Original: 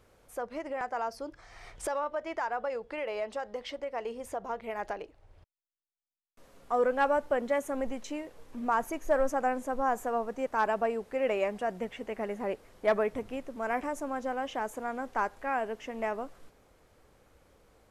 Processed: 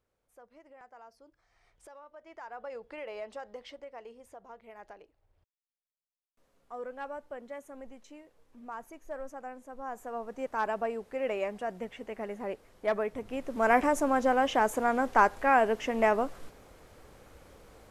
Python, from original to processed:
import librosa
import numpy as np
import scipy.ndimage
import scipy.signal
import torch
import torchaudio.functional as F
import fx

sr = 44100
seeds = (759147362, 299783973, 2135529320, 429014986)

y = fx.gain(x, sr, db=fx.line((2.06, -19.0), (2.77, -6.0), (3.52, -6.0), (4.29, -13.5), (9.67, -13.5), (10.43, -3.0), (13.17, -3.0), (13.64, 8.0)))